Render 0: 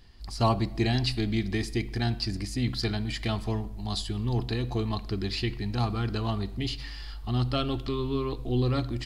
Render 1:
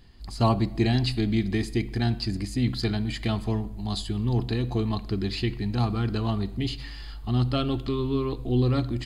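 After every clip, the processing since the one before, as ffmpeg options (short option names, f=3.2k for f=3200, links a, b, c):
-af "equalizer=f=200:t=o:w=2.1:g=4.5,bandreject=f=5.6k:w=6.1"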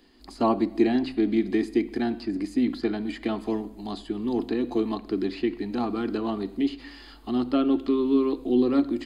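-filter_complex "[0:a]lowshelf=f=190:t=q:w=3:g=-13.5,acrossover=split=240|2500[a][b][c];[c]acompressor=threshold=-48dB:ratio=6[d];[a][b][d]amix=inputs=3:normalize=0"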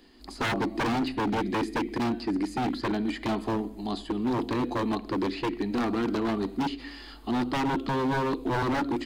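-af "aeval=exprs='0.0668*(abs(mod(val(0)/0.0668+3,4)-2)-1)':c=same,volume=2dB"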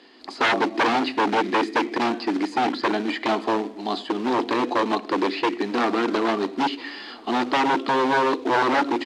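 -filter_complex "[0:a]asplit=2[a][b];[b]acrusher=bits=3:mode=log:mix=0:aa=0.000001,volume=-3dB[c];[a][c]amix=inputs=2:normalize=0,highpass=380,lowpass=4.7k,asplit=2[d][e];[e]adelay=1341,volume=-24dB,highshelf=f=4k:g=-30.2[f];[d][f]amix=inputs=2:normalize=0,volume=4.5dB"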